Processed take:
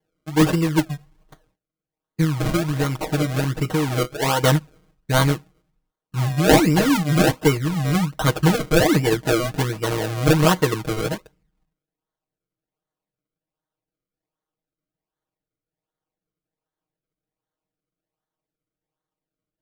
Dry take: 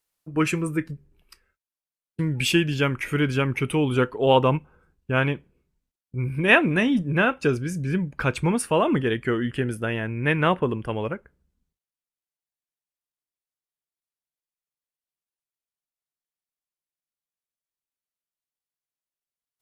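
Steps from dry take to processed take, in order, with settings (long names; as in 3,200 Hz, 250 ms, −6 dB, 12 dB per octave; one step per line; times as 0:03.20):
sample-and-hold swept by an LFO 34×, swing 100% 1.3 Hz
comb filter 6.4 ms, depth 91%
0:02.24–0:04.44: downward compressor, threshold −19 dBFS, peak gain reduction 8.5 dB
level +1.5 dB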